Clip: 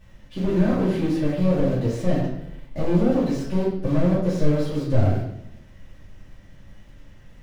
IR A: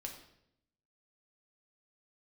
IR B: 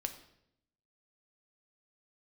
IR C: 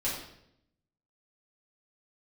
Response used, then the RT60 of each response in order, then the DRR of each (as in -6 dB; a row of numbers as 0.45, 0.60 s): C; 0.75, 0.75, 0.75 s; 1.5, 6.5, -8.5 dB